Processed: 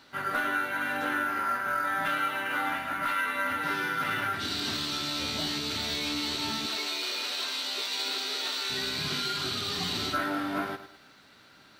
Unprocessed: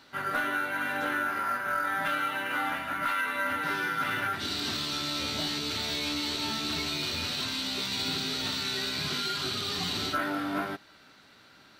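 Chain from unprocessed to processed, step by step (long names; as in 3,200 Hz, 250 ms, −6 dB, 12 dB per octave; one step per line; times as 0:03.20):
0:06.66–0:08.70: high-pass filter 360 Hz 24 dB per octave
feedback echo at a low word length 105 ms, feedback 35%, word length 10 bits, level −12 dB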